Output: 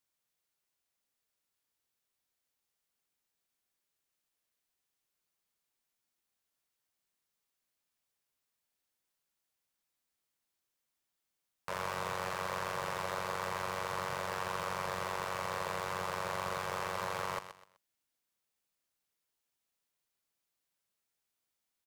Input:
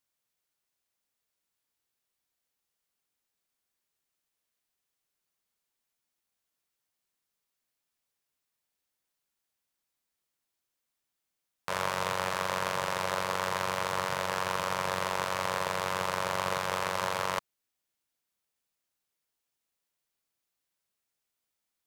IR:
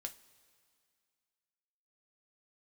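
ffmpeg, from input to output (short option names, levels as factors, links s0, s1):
-filter_complex "[0:a]asplit=2[s0][s1];[s1]alimiter=limit=0.112:level=0:latency=1,volume=0.891[s2];[s0][s2]amix=inputs=2:normalize=0,aecho=1:1:126|252|378:0.188|0.0546|0.0158,asoftclip=type=tanh:threshold=0.133,volume=0.447"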